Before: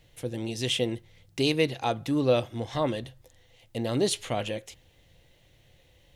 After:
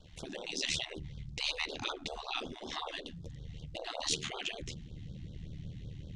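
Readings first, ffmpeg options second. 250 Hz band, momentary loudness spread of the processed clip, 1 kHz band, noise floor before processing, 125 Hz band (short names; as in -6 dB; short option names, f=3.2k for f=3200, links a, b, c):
-17.0 dB, 13 LU, -8.5 dB, -61 dBFS, -10.5 dB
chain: -filter_complex "[0:a]aeval=exprs='val(0)*sin(2*PI*38*n/s)':c=same,asubboost=boost=12:cutoff=250,asplit=2[a][b];[b]alimiter=limit=-14dB:level=0:latency=1:release=40,volume=-1.5dB[c];[a][c]amix=inputs=2:normalize=0,equalizer=f=110:t=o:w=0.2:g=3,asoftclip=type=tanh:threshold=-4.5dB,afftfilt=real='re*lt(hypot(re,im),0.112)':imag='im*lt(hypot(re,im),0.112)':win_size=1024:overlap=0.75,lowpass=f=6.9k:w=0.5412,lowpass=f=6.9k:w=1.3066,afftfilt=real='re*(1-between(b*sr/1024,440*pow(2300/440,0.5+0.5*sin(2*PI*5.3*pts/sr))/1.41,440*pow(2300/440,0.5+0.5*sin(2*PI*5.3*pts/sr))*1.41))':imag='im*(1-between(b*sr/1024,440*pow(2300/440,0.5+0.5*sin(2*PI*5.3*pts/sr))/1.41,440*pow(2300/440,0.5+0.5*sin(2*PI*5.3*pts/sr))*1.41))':win_size=1024:overlap=0.75"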